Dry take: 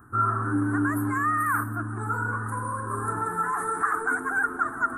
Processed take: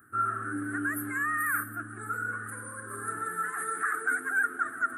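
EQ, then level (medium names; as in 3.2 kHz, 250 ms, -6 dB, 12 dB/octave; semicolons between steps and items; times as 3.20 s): low-pass 3.2 kHz 6 dB/octave; tilt EQ +4.5 dB/octave; static phaser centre 2.3 kHz, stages 4; 0.0 dB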